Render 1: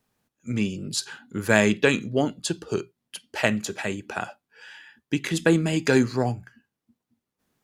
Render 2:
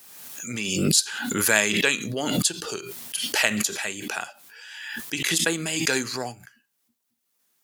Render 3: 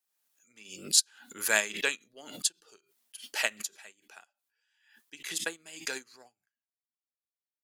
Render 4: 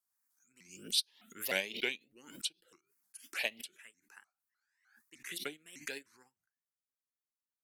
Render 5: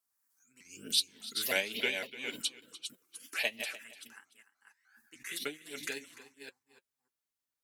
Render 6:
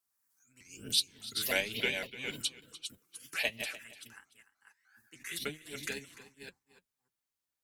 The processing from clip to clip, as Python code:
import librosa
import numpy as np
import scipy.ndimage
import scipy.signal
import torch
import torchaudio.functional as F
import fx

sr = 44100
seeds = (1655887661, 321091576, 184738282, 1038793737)

y1 = fx.tilt_eq(x, sr, slope=4.0)
y1 = fx.pre_swell(y1, sr, db_per_s=36.0)
y1 = y1 * librosa.db_to_amplitude(-3.0)
y2 = fx.peak_eq(y1, sr, hz=110.0, db=-13.0, octaves=2.0)
y2 = fx.upward_expand(y2, sr, threshold_db=-39.0, expansion=2.5)
y2 = y2 * librosa.db_to_amplitude(-1.5)
y3 = fx.env_phaser(y2, sr, low_hz=520.0, high_hz=1400.0, full_db=-29.5)
y3 = fx.vibrato_shape(y3, sr, shape='saw_up', rate_hz=3.3, depth_cents=250.0)
y3 = y3 * librosa.db_to_amplitude(-3.0)
y4 = fx.reverse_delay(y3, sr, ms=295, wet_db=-7.5)
y4 = fx.notch_comb(y4, sr, f0_hz=180.0)
y4 = y4 + 10.0 ** (-16.5 / 20.0) * np.pad(y4, (int(296 * sr / 1000.0), 0))[:len(y4)]
y4 = y4 * librosa.db_to_amplitude(4.0)
y5 = fx.octave_divider(y4, sr, octaves=1, level_db=-2.0)